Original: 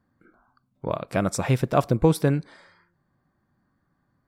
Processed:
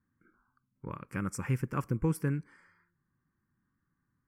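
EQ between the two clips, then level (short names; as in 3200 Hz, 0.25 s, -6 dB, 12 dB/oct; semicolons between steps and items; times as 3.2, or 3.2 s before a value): fixed phaser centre 1600 Hz, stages 4; -7.5 dB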